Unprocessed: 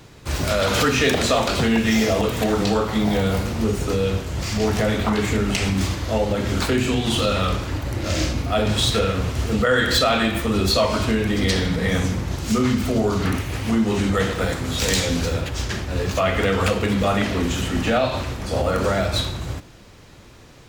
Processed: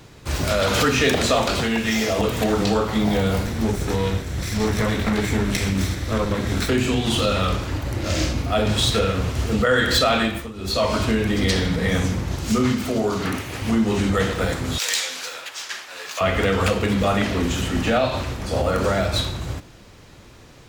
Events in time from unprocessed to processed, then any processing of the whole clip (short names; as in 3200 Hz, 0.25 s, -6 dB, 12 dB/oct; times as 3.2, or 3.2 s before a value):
1.59–2.18 low shelf 480 Hz -5.5 dB
3.45–6.69 minimum comb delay 0.52 ms
10.2–10.89 dip -17 dB, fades 0.33 s
12.72–13.62 HPF 200 Hz 6 dB/oct
14.78–16.21 HPF 1100 Hz